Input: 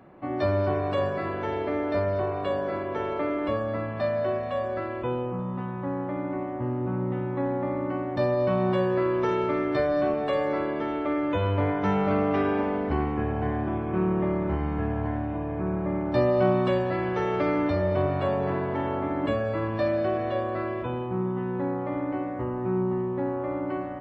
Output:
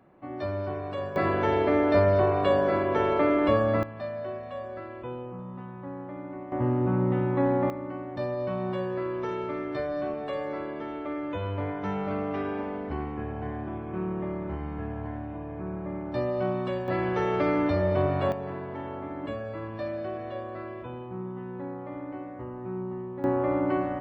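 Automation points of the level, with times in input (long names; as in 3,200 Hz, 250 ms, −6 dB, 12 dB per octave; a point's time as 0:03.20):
−7 dB
from 0:01.16 +5 dB
from 0:03.83 −8 dB
from 0:06.52 +3.5 dB
from 0:07.70 −6.5 dB
from 0:16.88 0 dB
from 0:18.32 −8 dB
from 0:23.24 +4 dB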